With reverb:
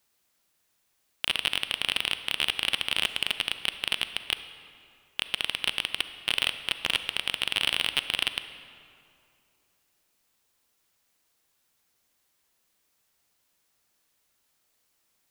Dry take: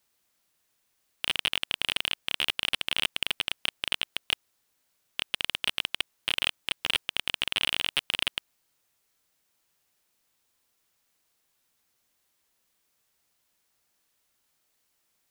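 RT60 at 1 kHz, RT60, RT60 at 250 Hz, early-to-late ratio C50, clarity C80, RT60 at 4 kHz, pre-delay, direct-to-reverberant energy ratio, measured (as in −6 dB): 2.5 s, 2.6 s, 2.7 s, 11.0 dB, 12.0 dB, 1.6 s, 35 ms, 10.5 dB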